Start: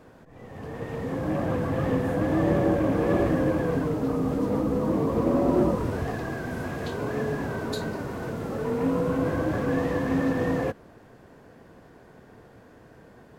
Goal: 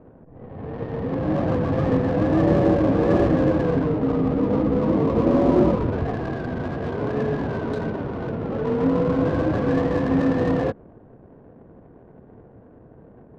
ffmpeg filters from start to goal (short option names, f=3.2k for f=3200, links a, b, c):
-af "lowpass=f=1.7k:p=1,adynamicsmooth=sensitivity=5.5:basefreq=660,volume=5dB"